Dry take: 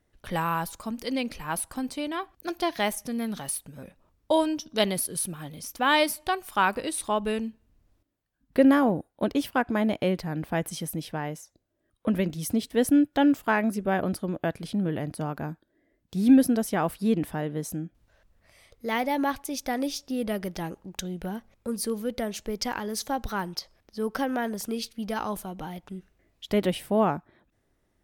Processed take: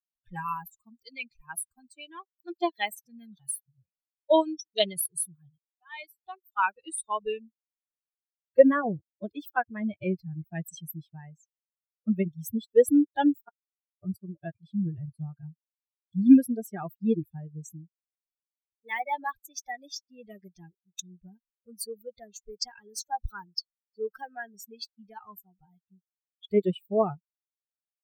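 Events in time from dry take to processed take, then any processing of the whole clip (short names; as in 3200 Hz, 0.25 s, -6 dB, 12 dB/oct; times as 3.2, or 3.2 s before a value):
5.58–6.98 fade in
13.49–14.03 mute
whole clip: per-bin expansion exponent 3; dynamic EQ 500 Hz, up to +7 dB, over -49 dBFS, Q 3.4; gain +4 dB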